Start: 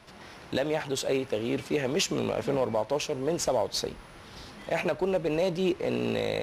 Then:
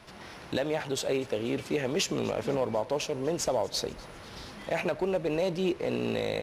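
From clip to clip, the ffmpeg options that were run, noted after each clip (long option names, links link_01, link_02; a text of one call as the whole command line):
ffmpeg -i in.wav -filter_complex "[0:a]asplit=2[link_01][link_02];[link_02]acompressor=threshold=-34dB:ratio=6,volume=-2.5dB[link_03];[link_01][link_03]amix=inputs=2:normalize=0,aecho=1:1:245|490|735|980:0.0841|0.0463|0.0255|0.014,volume=-3.5dB" out.wav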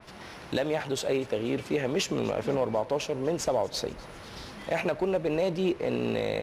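ffmpeg -i in.wav -af "adynamicequalizer=threshold=0.00398:dfrequency=3100:dqfactor=0.7:tfrequency=3100:tqfactor=0.7:attack=5:release=100:ratio=0.375:range=2:mode=cutabove:tftype=highshelf,volume=1.5dB" out.wav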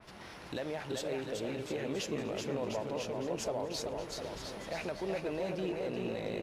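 ffmpeg -i in.wav -filter_complex "[0:a]alimiter=limit=-23.5dB:level=0:latency=1:release=200,asplit=2[link_01][link_02];[link_02]aecho=0:1:380|703|977.6|1211|1409:0.631|0.398|0.251|0.158|0.1[link_03];[link_01][link_03]amix=inputs=2:normalize=0,volume=-5dB" out.wav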